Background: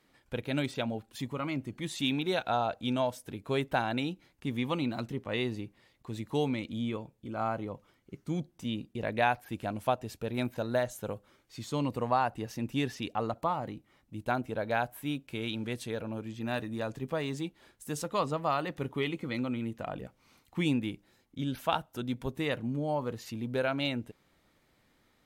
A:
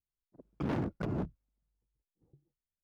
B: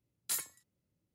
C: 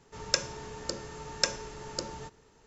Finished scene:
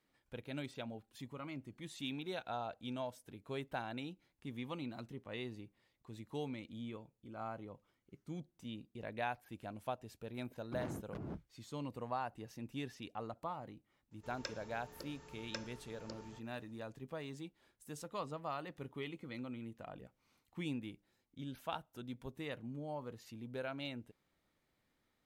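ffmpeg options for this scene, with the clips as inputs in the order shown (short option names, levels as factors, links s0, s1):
-filter_complex "[0:a]volume=0.251[s0];[3:a]acrossover=split=5300[s1][s2];[s2]acompressor=threshold=0.00158:ratio=4:attack=1:release=60[s3];[s1][s3]amix=inputs=2:normalize=0[s4];[1:a]atrim=end=2.83,asetpts=PTS-STARTPTS,volume=0.299,afade=t=in:d=0.004:c=hsin,afade=t=out:st=2.826:d=0.004:c=hsin,adelay=10120[s5];[s4]atrim=end=2.66,asetpts=PTS-STARTPTS,volume=0.2,afade=t=in:d=0.004:c=hsin,afade=t=out:st=2.656:d=0.004:c=hsin,adelay=14110[s6];[s0][s5][s6]amix=inputs=3:normalize=0"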